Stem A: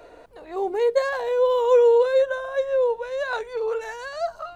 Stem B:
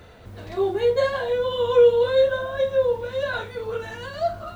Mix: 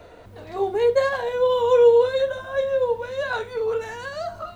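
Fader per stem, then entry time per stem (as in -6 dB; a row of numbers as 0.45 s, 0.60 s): -0.5 dB, -5.0 dB; 0.00 s, 0.00 s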